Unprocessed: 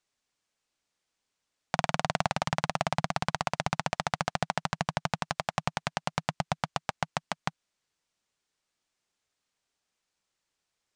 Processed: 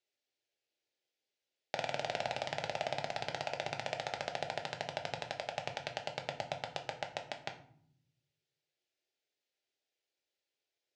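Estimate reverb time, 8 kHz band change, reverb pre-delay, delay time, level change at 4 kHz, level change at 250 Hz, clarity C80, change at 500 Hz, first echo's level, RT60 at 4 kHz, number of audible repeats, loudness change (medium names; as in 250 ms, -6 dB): 0.65 s, -10.5 dB, 5 ms, no echo, -5.0 dB, -15.0 dB, 14.5 dB, -3.0 dB, no echo, 0.35 s, no echo, -7.5 dB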